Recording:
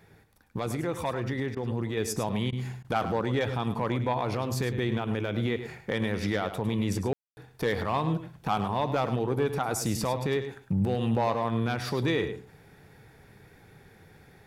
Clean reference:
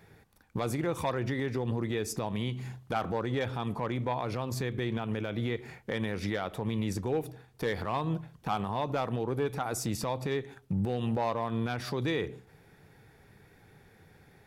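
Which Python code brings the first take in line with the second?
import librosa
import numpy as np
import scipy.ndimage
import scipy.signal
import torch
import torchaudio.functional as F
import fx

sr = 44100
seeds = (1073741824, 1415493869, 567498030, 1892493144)

y = fx.fix_ambience(x, sr, seeds[0], print_start_s=0.05, print_end_s=0.55, start_s=7.13, end_s=7.37)
y = fx.fix_interpolate(y, sr, at_s=(1.55, 2.51, 2.83), length_ms=14.0)
y = fx.fix_echo_inverse(y, sr, delay_ms=104, level_db=-11.0)
y = fx.fix_level(y, sr, at_s=1.97, step_db=-3.5)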